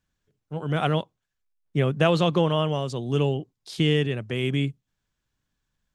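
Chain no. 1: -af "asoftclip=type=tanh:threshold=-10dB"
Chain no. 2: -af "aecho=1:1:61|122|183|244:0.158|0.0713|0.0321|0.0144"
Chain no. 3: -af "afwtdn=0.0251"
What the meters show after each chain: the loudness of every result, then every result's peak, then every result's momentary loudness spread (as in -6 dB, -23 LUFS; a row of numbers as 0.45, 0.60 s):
-25.5, -25.0, -25.0 LUFS; -10.5, -6.0, -6.0 dBFS; 10, 11, 11 LU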